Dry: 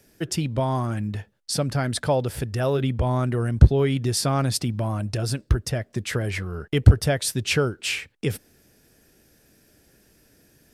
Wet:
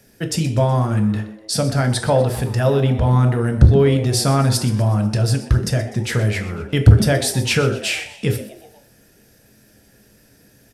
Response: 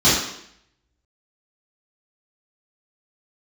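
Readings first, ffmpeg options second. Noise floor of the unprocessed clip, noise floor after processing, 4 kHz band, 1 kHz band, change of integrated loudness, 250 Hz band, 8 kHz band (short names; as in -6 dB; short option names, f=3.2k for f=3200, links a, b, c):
-60 dBFS, -53 dBFS, +5.0 dB, +5.0 dB, +6.0 dB, +6.5 dB, +4.5 dB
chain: -filter_complex "[0:a]asplit=5[a][b][c][d][e];[b]adelay=124,afreqshift=110,volume=-16dB[f];[c]adelay=248,afreqshift=220,volume=-22dB[g];[d]adelay=372,afreqshift=330,volume=-28dB[h];[e]adelay=496,afreqshift=440,volume=-34.1dB[i];[a][f][g][h][i]amix=inputs=5:normalize=0,asplit=2[j][k];[1:a]atrim=start_sample=2205,asetrate=70560,aresample=44100[l];[k][l]afir=irnorm=-1:irlink=0,volume=-24.5dB[m];[j][m]amix=inputs=2:normalize=0,acontrast=28,volume=-1dB"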